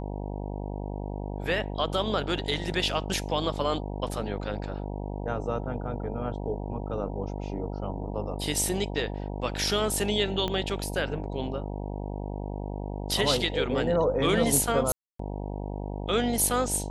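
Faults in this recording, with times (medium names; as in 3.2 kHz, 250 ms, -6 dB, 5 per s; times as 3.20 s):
buzz 50 Hz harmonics 19 -34 dBFS
10.48 s: pop -17 dBFS
14.92–15.19 s: dropout 274 ms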